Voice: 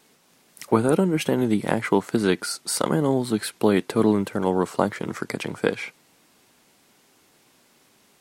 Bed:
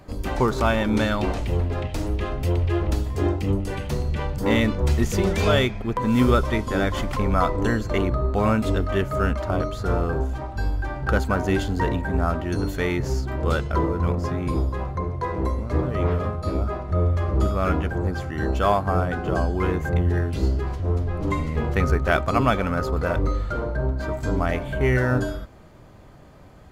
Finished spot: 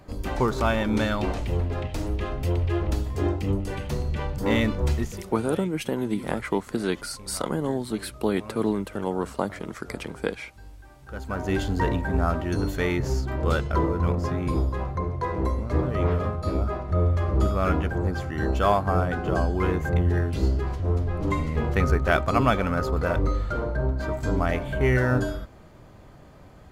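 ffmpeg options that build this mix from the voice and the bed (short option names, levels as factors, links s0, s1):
-filter_complex "[0:a]adelay=4600,volume=0.531[s0];[1:a]volume=7.5,afade=t=out:st=4.87:d=0.37:silence=0.11885,afade=t=in:st=11.09:d=0.61:silence=0.1[s1];[s0][s1]amix=inputs=2:normalize=0"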